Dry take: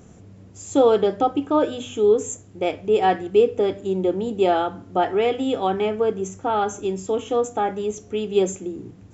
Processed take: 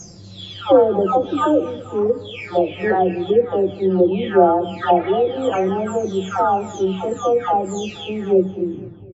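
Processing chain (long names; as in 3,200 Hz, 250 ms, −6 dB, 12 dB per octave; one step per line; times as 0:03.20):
every frequency bin delayed by itself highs early, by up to 879 ms
treble cut that deepens with the level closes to 1,100 Hz, closed at −18 dBFS
repeating echo 238 ms, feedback 53%, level −20 dB
level +7 dB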